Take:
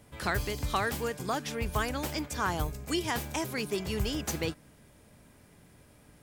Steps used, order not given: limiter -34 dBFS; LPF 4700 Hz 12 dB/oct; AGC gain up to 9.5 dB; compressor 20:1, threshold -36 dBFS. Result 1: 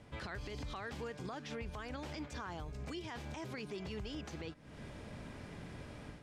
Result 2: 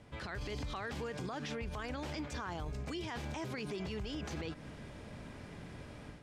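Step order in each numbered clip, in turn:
AGC > compressor > limiter > LPF; limiter > AGC > compressor > LPF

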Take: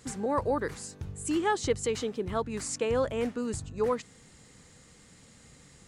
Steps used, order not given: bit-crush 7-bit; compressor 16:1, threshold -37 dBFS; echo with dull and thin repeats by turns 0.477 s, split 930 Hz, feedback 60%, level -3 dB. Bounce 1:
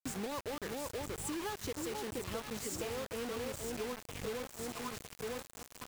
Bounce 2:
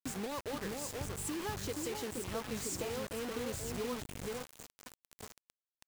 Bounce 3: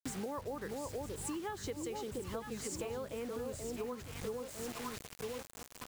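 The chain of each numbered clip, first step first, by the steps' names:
echo with dull and thin repeats by turns > compressor > bit-crush; compressor > echo with dull and thin repeats by turns > bit-crush; echo with dull and thin repeats by turns > bit-crush > compressor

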